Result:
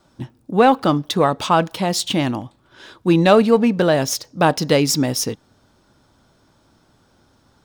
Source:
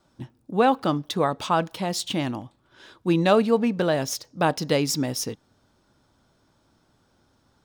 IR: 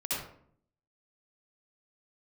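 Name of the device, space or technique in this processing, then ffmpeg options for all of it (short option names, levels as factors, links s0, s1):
parallel distortion: -filter_complex "[0:a]asplit=2[s0][s1];[s1]asoftclip=type=hard:threshold=0.112,volume=0.251[s2];[s0][s2]amix=inputs=2:normalize=0,volume=1.78"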